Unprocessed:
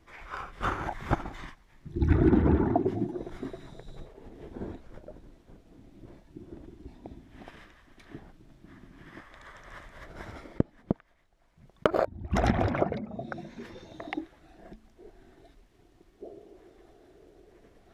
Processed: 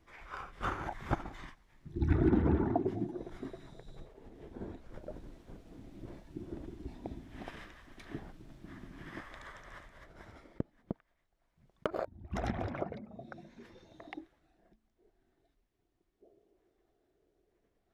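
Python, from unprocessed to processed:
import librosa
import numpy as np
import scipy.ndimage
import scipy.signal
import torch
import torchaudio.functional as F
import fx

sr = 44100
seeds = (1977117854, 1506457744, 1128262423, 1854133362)

y = fx.gain(x, sr, db=fx.line((4.71, -5.5), (5.13, 2.0), (9.32, 2.0), (10.16, -10.5), (14.14, -10.5), (14.7, -19.0)))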